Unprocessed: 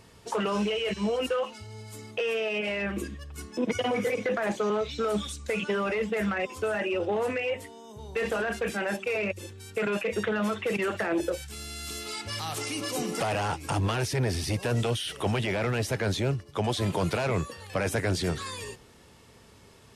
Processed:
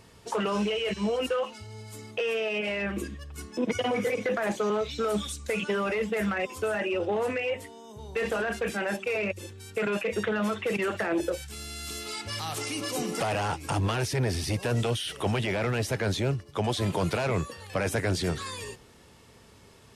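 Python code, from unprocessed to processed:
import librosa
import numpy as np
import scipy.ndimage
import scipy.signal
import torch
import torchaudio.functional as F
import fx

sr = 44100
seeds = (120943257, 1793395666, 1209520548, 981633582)

y = fx.high_shelf(x, sr, hz=11000.0, db=8.5, at=(4.21, 6.75))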